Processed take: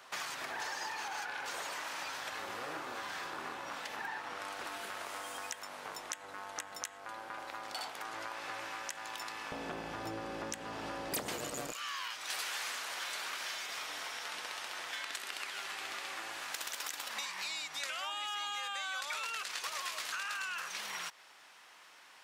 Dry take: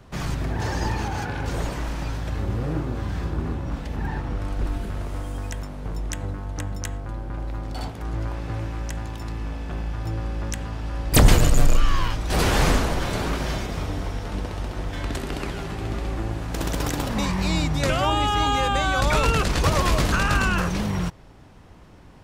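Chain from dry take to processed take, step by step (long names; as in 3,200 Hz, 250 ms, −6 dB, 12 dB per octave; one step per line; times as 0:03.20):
high-pass filter 1,000 Hz 12 dB per octave, from 0:09.52 350 Hz, from 0:11.72 1,500 Hz
downward compressor 6 to 1, threshold −41 dBFS, peak gain reduction 23.5 dB
level +3.5 dB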